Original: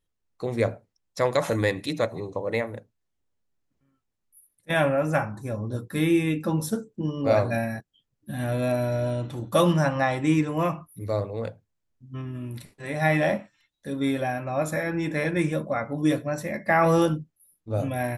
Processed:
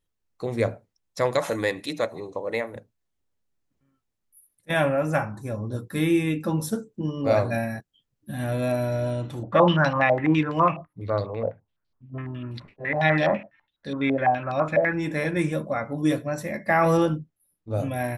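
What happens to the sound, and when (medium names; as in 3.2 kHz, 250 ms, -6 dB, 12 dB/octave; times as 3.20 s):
1.38–2.76 s: peaking EQ 110 Hz -9.5 dB 1.7 oct
9.43–14.93 s: step-sequenced low-pass 12 Hz 650–4400 Hz
16.97–17.71 s: treble shelf 5.6 kHz -11.5 dB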